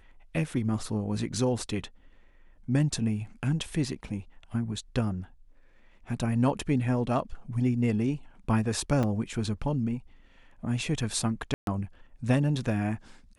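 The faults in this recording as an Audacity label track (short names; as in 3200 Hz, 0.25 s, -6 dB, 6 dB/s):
9.030000	9.040000	gap 5.3 ms
11.540000	11.670000	gap 0.132 s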